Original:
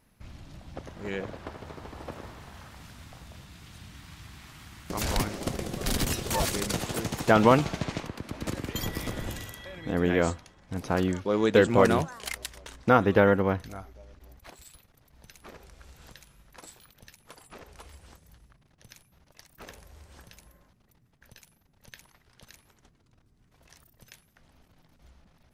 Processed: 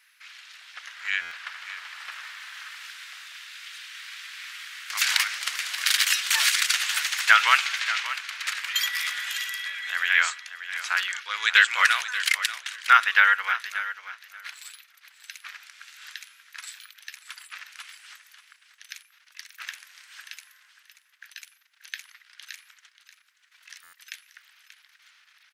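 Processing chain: Chebyshev high-pass 1.5 kHz, order 3; peaking EQ 2.5 kHz +11 dB 2.7 oct; on a send: feedback delay 584 ms, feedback 17%, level -13 dB; on the sum: buffer glitch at 1.21/23.83 s, samples 512, times 8; trim +4 dB

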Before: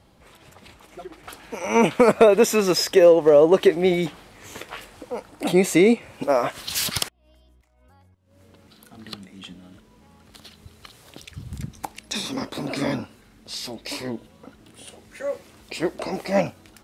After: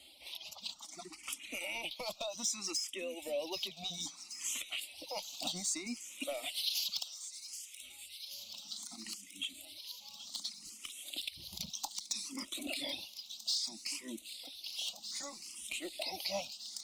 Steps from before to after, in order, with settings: octave divider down 1 oct, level -6 dB; frequency weighting D; reverb removal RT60 1.6 s; treble shelf 2 kHz +11.5 dB; compression 16:1, threshold -24 dBFS, peak gain reduction 24 dB; saturation -18.5 dBFS, distortion -16 dB; static phaser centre 440 Hz, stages 6; on a send: feedback echo behind a high-pass 780 ms, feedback 84%, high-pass 3.4 kHz, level -9.5 dB; on the sum: barber-pole phaser +0.63 Hz; trim -4 dB

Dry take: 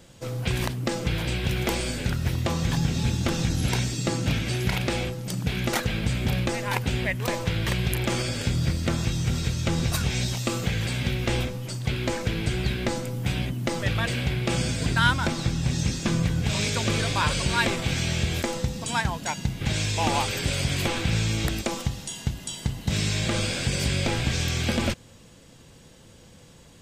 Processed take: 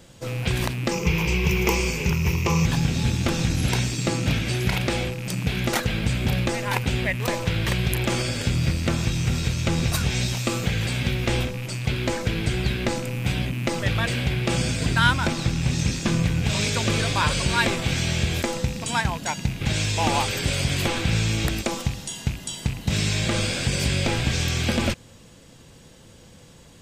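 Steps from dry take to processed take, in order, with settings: rattle on loud lows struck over -32 dBFS, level -28 dBFS; 0.91–2.66 s: rippled EQ curve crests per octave 0.78, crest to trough 13 dB; trim +2 dB

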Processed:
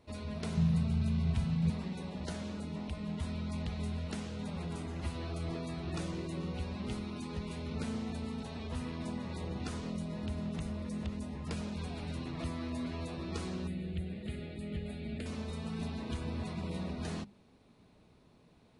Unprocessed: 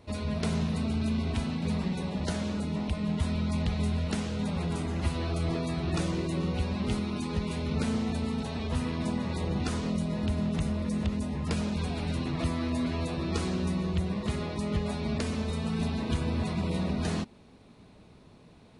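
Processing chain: hum notches 50/100/150/200 Hz; 0.57–1.70 s: resonant low shelf 210 Hz +7 dB, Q 3; 13.67–15.26 s: static phaser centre 2.5 kHz, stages 4; trim -8 dB

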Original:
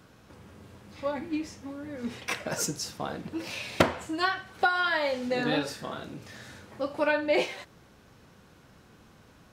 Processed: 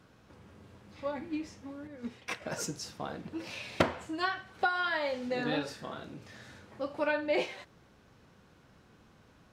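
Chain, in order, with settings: treble shelf 8.8 kHz -9 dB; 1.87–2.42 s: upward expansion 1.5:1, over -43 dBFS; trim -4.5 dB

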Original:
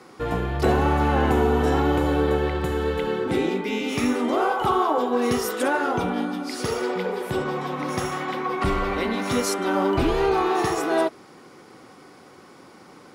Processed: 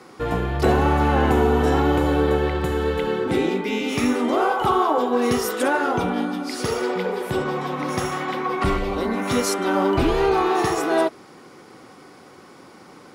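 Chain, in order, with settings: 8.76–9.27 s: peaking EQ 1 kHz -> 5.1 kHz -13 dB 0.78 oct; trim +2 dB

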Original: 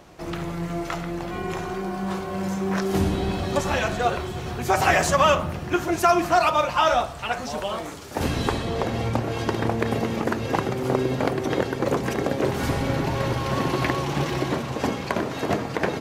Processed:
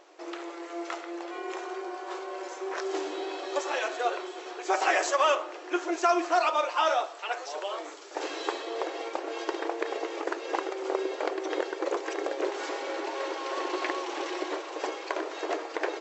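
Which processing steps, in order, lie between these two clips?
brick-wall FIR band-pass 300–7900 Hz; trim -5.5 dB

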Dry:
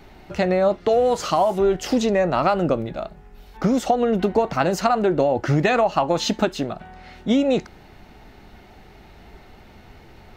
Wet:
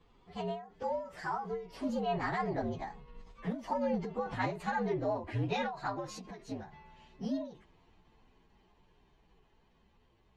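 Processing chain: frequency axis rescaled in octaves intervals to 119%; Doppler pass-by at 4.01 s, 17 m/s, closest 7.4 m; low-pass 4.3 kHz 12 dB/octave; reverse; compression 10:1, threshold -33 dBFS, peak gain reduction 17 dB; reverse; endings held to a fixed fall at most 120 dB/s; trim +4.5 dB

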